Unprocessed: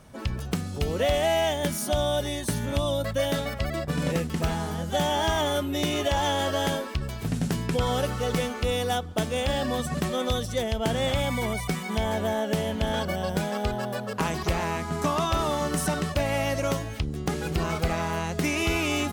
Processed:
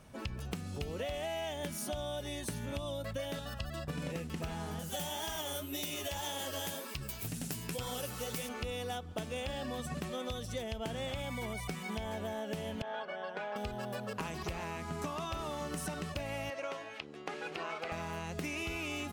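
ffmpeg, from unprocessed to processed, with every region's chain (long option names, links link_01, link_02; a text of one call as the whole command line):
ffmpeg -i in.wav -filter_complex "[0:a]asettb=1/sr,asplit=3[link_01][link_02][link_03];[link_01]atrim=end=3.394[link_04];[link_02]atrim=start=3.39:end=3.88,asetpts=PTS-STARTPTS,afade=type=in:duration=0.004:curve=qsin,afade=type=out:start_time=0.486:duration=0.004:curve=qsin,asuperstop=centerf=2200:order=4:qfactor=3.8,equalizer=frequency=420:width_type=o:width=1.3:gain=-9.5[link_05];[link_03]atrim=start=3.876[link_06];[link_04][link_05]acrossfade=duration=0.004:curve1=hsin:curve2=qsin[link_07];[link_07][link_06]acrossfade=duration=0.004:curve1=qsin:curve2=hsin,asettb=1/sr,asplit=3[link_08][link_09][link_10];[link_08]atrim=end=4.794[link_11];[link_09]atrim=start=4.79:end=8.49,asetpts=PTS-STARTPTS,afade=type=in:duration=0.004:curve=qsin,afade=type=out:start_time=3.696:duration=0.004:curve=qsin,aemphasis=mode=production:type=75fm,flanger=delay=3.5:depth=9.3:regen=39:speed=1.9:shape=triangular[link_12];[link_10]atrim=start=8.486[link_13];[link_11][link_12]acrossfade=duration=0.004:curve1=hsin:curve2=qsin[link_14];[link_14][link_13]acrossfade=duration=0.004:curve1=qsin:curve2=hsin,asettb=1/sr,asplit=3[link_15][link_16][link_17];[link_15]atrim=end=12.824[link_18];[link_16]atrim=start=12.82:end=13.56,asetpts=PTS-STARTPTS,afade=type=in:duration=0.004:curve=qsin,afade=type=out:start_time=0.736:duration=0.004:curve=qsin,highpass=610,lowpass=2100,aecho=1:1:4.8:0.49,atrim=end_sample=32634[link_19];[link_17]atrim=start=13.556[link_20];[link_18][link_19]acrossfade=duration=0.004:curve1=hsin:curve2=qsin[link_21];[link_21][link_20]acrossfade=duration=0.004:curve1=qsin:curve2=hsin,asettb=1/sr,asplit=3[link_22][link_23][link_24];[link_22]atrim=end=16.504[link_25];[link_23]atrim=start=16.5:end=17.92,asetpts=PTS-STARTPTS,afade=type=in:duration=0.004:curve=qsin,afade=type=out:start_time=1.416:duration=0.004:curve=qsin,highpass=460,lowpass=2300,aemphasis=mode=production:type=75kf[link_26];[link_24]atrim=start=17.916[link_27];[link_25][link_26]acrossfade=duration=0.004:curve1=hsin:curve2=qsin[link_28];[link_28][link_27]acrossfade=duration=0.004:curve1=qsin:curve2=hsin,equalizer=frequency=2600:width=4.8:gain=4.5,acompressor=threshold=-30dB:ratio=6,volume=-5.5dB" out.wav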